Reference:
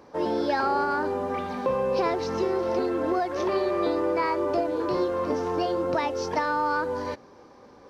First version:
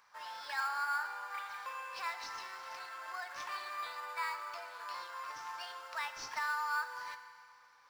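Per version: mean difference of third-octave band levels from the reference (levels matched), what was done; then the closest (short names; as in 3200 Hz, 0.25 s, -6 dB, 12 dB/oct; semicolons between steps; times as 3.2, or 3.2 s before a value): 15.0 dB: HPF 1200 Hz 24 dB/oct; in parallel at -10 dB: sample-rate reducer 6000 Hz, jitter 0%; on the sum: FDN reverb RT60 2.2 s, low-frequency decay 0.8×, high-frequency decay 0.9×, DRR 8 dB; gain -6.5 dB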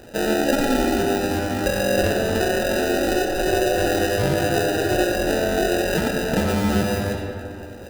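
11.0 dB: in parallel at +3 dB: compressor, threshold -33 dBFS, peak gain reduction 12 dB; on the sum: sample-rate reducer 1100 Hz, jitter 0%; digital reverb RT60 2.6 s, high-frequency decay 0.45×, pre-delay 30 ms, DRR 2.5 dB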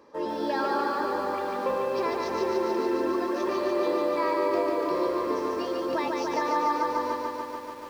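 6.0 dB: bell 120 Hz -11 dB 1.3 oct; notch comb 740 Hz; lo-fi delay 0.145 s, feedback 80%, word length 9-bit, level -3 dB; gain -2.5 dB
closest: third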